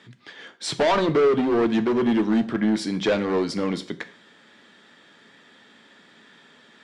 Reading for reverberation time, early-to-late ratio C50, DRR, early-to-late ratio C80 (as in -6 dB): 0.45 s, 16.0 dB, 9.5 dB, 19.5 dB